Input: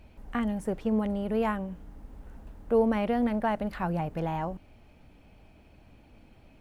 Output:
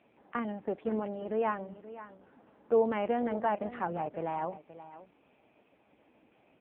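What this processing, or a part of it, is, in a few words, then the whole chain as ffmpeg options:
satellite phone: -filter_complex "[0:a]asplit=3[link_01][link_02][link_03];[link_01]afade=type=out:start_time=2.98:duration=0.02[link_04];[link_02]equalizer=frequency=5400:width_type=o:width=0.98:gain=-4,afade=type=in:start_time=2.98:duration=0.02,afade=type=out:start_time=3.65:duration=0.02[link_05];[link_03]afade=type=in:start_time=3.65:duration=0.02[link_06];[link_04][link_05][link_06]amix=inputs=3:normalize=0,highpass=310,lowpass=3000,aecho=1:1:527:0.188" -ar 8000 -c:a libopencore_amrnb -b:a 5900

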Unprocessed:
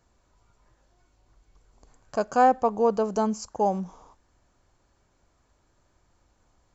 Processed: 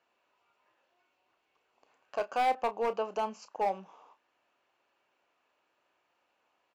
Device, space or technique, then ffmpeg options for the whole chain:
megaphone: -filter_complex "[0:a]highpass=490,lowpass=3400,equalizer=frequency=2700:width_type=o:width=0.36:gain=12,asoftclip=type=hard:threshold=-20dB,asplit=2[link_01][link_02];[link_02]adelay=31,volume=-12dB[link_03];[link_01][link_03]amix=inputs=2:normalize=0,volume=-4dB"

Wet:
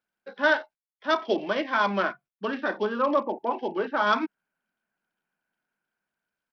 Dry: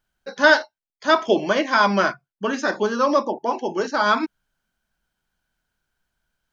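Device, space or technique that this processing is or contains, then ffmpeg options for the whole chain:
Bluetooth headset: -af "highpass=frequency=180:width=0.5412,highpass=frequency=180:width=1.3066,dynaudnorm=framelen=480:gausssize=5:maxgain=5.5dB,aresample=8000,aresample=44100,volume=-7.5dB" -ar 44100 -c:a sbc -b:a 64k

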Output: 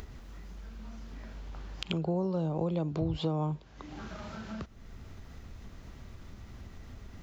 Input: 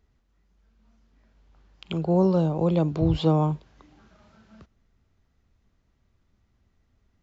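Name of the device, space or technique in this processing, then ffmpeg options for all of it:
upward and downward compression: -af "acompressor=mode=upward:threshold=-24dB:ratio=2.5,acompressor=threshold=-25dB:ratio=6,volume=-2.5dB"

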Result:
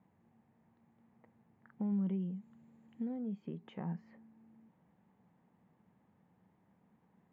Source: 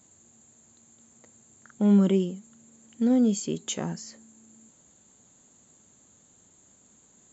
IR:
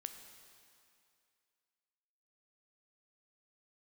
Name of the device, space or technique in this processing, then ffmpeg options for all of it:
bass amplifier: -filter_complex "[0:a]acompressor=threshold=-33dB:ratio=4,highpass=86,equalizer=frequency=180:width_type=q:width=4:gain=7,equalizer=frequency=260:width_type=q:width=4:gain=-4,equalizer=frequency=370:width_type=q:width=4:gain=-5,equalizer=frequency=590:width_type=q:width=4:gain=-5,equalizer=frequency=860:width_type=q:width=4:gain=4,equalizer=frequency=1400:width_type=q:width=4:gain=-8,lowpass=frequency=2000:width=0.5412,lowpass=frequency=2000:width=1.3066,asettb=1/sr,asplit=3[link_01][link_02][link_03];[link_01]atrim=end=1.924[link_04];[link_02]atrim=start=1.92:end=3.17,asetpts=PTS-STARTPTS,afade=type=in:duration=0.004:curve=qsin,afade=type=out:start_time=1.246:duration=0.004:curve=qsin,bass=frequency=250:gain=2,treble=frequency=4000:gain=15[link_05];[link_03]atrim=start=3.166[link_06];[link_04][link_05]acrossfade=duration=0.004:curve1=hsin:curve2=qsin[link_07];[link_07][link_06]acrossfade=duration=0.004:curve1=qsin:curve2=hsin,volume=-5dB"

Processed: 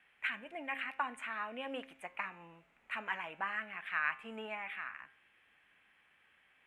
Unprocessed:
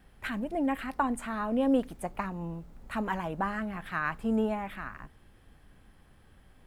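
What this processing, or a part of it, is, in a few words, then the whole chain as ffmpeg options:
piezo pickup straight into a mixer: -af "lowpass=5600,aderivative,highshelf=frequency=3400:width_type=q:width=3:gain=-12,bandreject=frequency=133.7:width_type=h:width=4,bandreject=frequency=267.4:width_type=h:width=4,bandreject=frequency=401.1:width_type=h:width=4,bandreject=frequency=534.8:width_type=h:width=4,bandreject=frequency=668.5:width_type=h:width=4,bandreject=frequency=802.2:width_type=h:width=4,bandreject=frequency=935.9:width_type=h:width=4,bandreject=frequency=1069.6:width_type=h:width=4,bandreject=frequency=1203.3:width_type=h:width=4,bandreject=frequency=1337:width_type=h:width=4,bandreject=frequency=1470.7:width_type=h:width=4,bandreject=frequency=1604.4:width_type=h:width=4,bandreject=frequency=1738.1:width_type=h:width=4,bandreject=frequency=1871.8:width_type=h:width=4,bandreject=frequency=2005.5:width_type=h:width=4,bandreject=frequency=2139.2:width_type=h:width=4,bandreject=frequency=2272.9:width_type=h:width=4,bandreject=frequency=2406.6:width_type=h:width=4,bandreject=frequency=2540.3:width_type=h:width=4,bandreject=frequency=2674:width_type=h:width=4,bandreject=frequency=2807.7:width_type=h:width=4,bandreject=frequency=2941.4:width_type=h:width=4,bandreject=frequency=3075.1:width_type=h:width=4,bandreject=frequency=3208.8:width_type=h:width=4,bandreject=frequency=3342.5:width_type=h:width=4,bandreject=frequency=3476.2:width_type=h:width=4,bandreject=frequency=3609.9:width_type=h:width=4,bandreject=frequency=3743.6:width_type=h:width=4,bandreject=frequency=3877.3:width_type=h:width=4,volume=8.5dB"

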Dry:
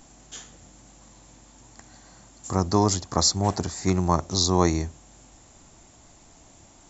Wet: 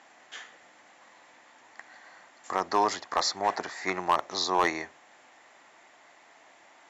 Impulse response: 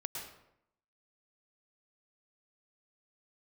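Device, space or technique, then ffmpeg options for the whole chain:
megaphone: -af "highpass=630,lowpass=3000,equalizer=frequency=1900:width_type=o:width=0.51:gain=8.5,asoftclip=type=hard:threshold=-17.5dB,volume=2.5dB"

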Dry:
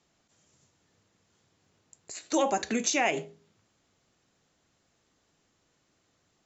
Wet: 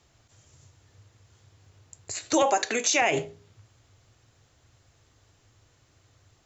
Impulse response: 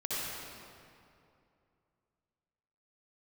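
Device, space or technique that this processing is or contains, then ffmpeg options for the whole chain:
car stereo with a boomy subwoofer: -filter_complex "[0:a]asettb=1/sr,asplit=3[link_01][link_02][link_03];[link_01]atrim=end=2.424[link_04];[link_02]atrim=start=2.42:end=3.02,asetpts=PTS-STARTPTS,afade=type=in:duration=0.004:curve=qsin,afade=type=out:start_time=0.596:duration=0.004:curve=qsin,highpass=400[link_05];[link_03]atrim=start=3.016[link_06];[link_04][link_05]acrossfade=duration=0.004:curve1=hsin:curve2=qsin[link_07];[link_07][link_06]acrossfade=duration=0.004:curve1=qsin:curve2=hsin,lowshelf=frequency=140:width_type=q:width=3:gain=8,alimiter=limit=-19.5dB:level=0:latency=1:release=38,volume=7dB"

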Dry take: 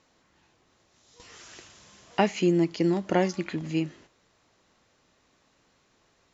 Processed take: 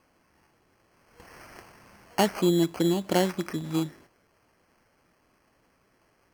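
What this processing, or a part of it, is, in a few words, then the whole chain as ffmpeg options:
crushed at another speed: -af "asetrate=22050,aresample=44100,acrusher=samples=24:mix=1:aa=0.000001,asetrate=88200,aresample=44100"

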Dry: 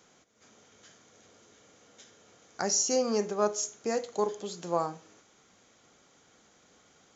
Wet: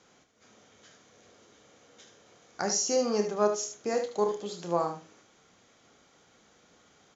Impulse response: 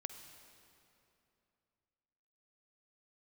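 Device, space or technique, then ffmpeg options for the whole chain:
slapback doubling: -filter_complex "[0:a]lowpass=6500,asplit=3[link_01][link_02][link_03];[link_02]adelay=29,volume=-9dB[link_04];[link_03]adelay=75,volume=-8.5dB[link_05];[link_01][link_04][link_05]amix=inputs=3:normalize=0"

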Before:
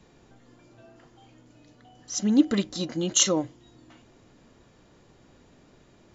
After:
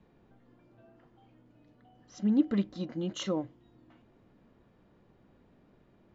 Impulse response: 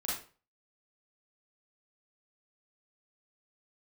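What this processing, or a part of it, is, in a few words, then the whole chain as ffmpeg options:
phone in a pocket: -af "lowpass=3800,equalizer=frequency=200:width_type=o:width=0.28:gain=5,highshelf=frequency=2500:gain=-9,volume=-6.5dB"

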